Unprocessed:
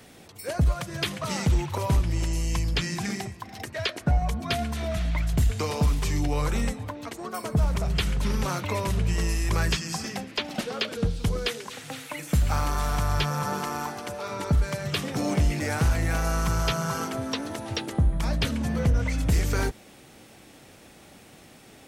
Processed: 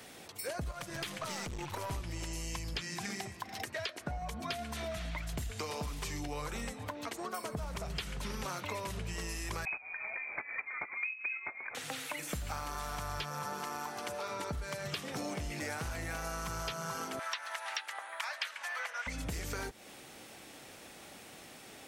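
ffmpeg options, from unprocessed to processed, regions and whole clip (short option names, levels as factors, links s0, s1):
-filter_complex "[0:a]asettb=1/sr,asplit=3[s0][s1][s2];[s0]atrim=end=0.714[s3];[s1]atrim=start=0.71:end=1.91,asetpts=PTS-STARTPTS,afade=t=in:d=0.004:c=qsin,afade=t=out:st=1.196:d=0.004:c=qsin,acompressor=threshold=0.0501:ratio=2:attack=3.2:release=140:knee=1:detection=peak,aeval=exprs='(tanh(22.4*val(0)+0.5)-tanh(0.5))/22.4':c=same[s4];[s2]atrim=start=1.906[s5];[s3][s4]acrossfade=d=0.004:c1=hsin:c2=qsin[s6];[s6][s5]acrossfade=d=0.004:c1=qsin:c2=hsin,asettb=1/sr,asplit=3[s7][s8][s9];[s7]atrim=end=9.654[s10];[s8]atrim=start=9.65:end=11.75,asetpts=PTS-STARTPTS,afade=t=in:d=0.004:c=qsin,afade=t=out:st=2.096:d=0.004:c=qsin,agate=range=0.355:threshold=0.0398:ratio=16:release=100:detection=peak,acompressor=mode=upward:threshold=0.0355:ratio=2.5:attack=3.2:release=140:knee=2.83:detection=peak,lowpass=f=2200:t=q:w=0.5098,lowpass=f=2200:t=q:w=0.6013,lowpass=f=2200:t=q:w=0.9,lowpass=f=2200:t=q:w=2.563,afreqshift=-2600[s11];[s9]atrim=start=11.746[s12];[s10][s11]acrossfade=d=0.004:c1=hsin:c2=qsin[s13];[s13][s12]acrossfade=d=0.004:c1=qsin:c2=hsin,asettb=1/sr,asplit=3[s14][s15][s16];[s14]atrim=end=17.194[s17];[s15]atrim=start=17.19:end=19.07,asetpts=PTS-STARTPTS,afade=t=in:d=0.004:c=qsin,afade=t=out:st=1.876:d=0.004:c=qsin,highpass=f=740:w=0.5412,highpass=f=740:w=1.3066,equalizer=f=1800:t=o:w=1.6:g=10.5[s18];[s16]atrim=start=19.066[s19];[s17][s18]acrossfade=d=0.004:c1=hsin:c2=qsin[s20];[s20][s19]acrossfade=d=0.004:c1=qsin:c2=hsin,lowshelf=f=300:g=-10,acompressor=threshold=0.0141:ratio=6,volume=1.12"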